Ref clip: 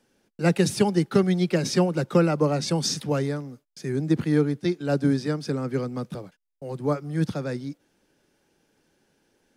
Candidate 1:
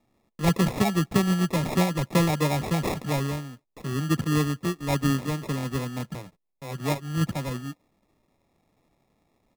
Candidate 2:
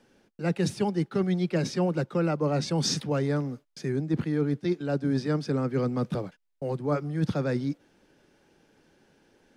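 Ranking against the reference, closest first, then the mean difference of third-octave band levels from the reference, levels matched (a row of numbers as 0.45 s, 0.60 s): 2, 1; 3.5 dB, 8.5 dB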